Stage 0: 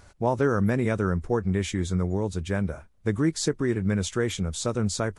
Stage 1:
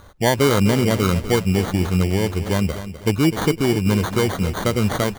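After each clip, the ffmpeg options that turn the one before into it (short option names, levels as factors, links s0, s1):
-af "acrusher=samples=17:mix=1:aa=0.000001,aecho=1:1:253|506|759|1012:0.251|0.0929|0.0344|0.0127,volume=2.11"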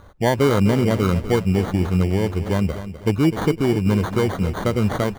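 -af "highshelf=f=2500:g=-9"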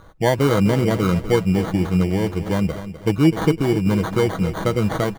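-af "aecho=1:1:6.2:0.41"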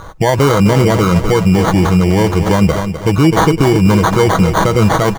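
-af "equalizer=f=250:t=o:w=0.67:g=-4,equalizer=f=1000:t=o:w=0.67:g=5,equalizer=f=6300:t=o:w=0.67:g=5,alimiter=level_in=5.62:limit=0.891:release=50:level=0:latency=1,volume=0.891"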